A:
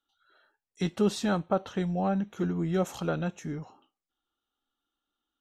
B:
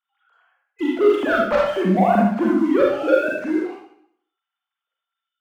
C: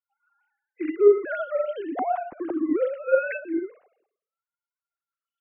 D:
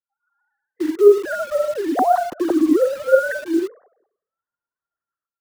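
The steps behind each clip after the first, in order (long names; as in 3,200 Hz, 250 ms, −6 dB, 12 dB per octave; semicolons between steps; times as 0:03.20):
three sine waves on the formant tracks; leveller curve on the samples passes 2; convolution reverb RT60 0.65 s, pre-delay 33 ms, DRR −4 dB; level +1 dB
three sine waves on the formant tracks; level −6 dB
Chebyshev low-pass filter 1,900 Hz, order 8; automatic gain control gain up to 11 dB; in parallel at −4.5 dB: bit reduction 5 bits; on the sum: level −4 dB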